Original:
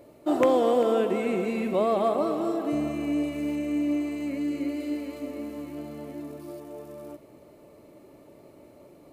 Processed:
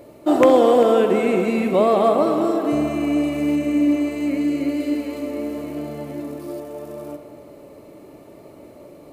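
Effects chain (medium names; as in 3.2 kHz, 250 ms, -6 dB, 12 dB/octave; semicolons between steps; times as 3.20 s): tape echo 64 ms, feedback 90%, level -12 dB, low-pass 3 kHz; trim +7.5 dB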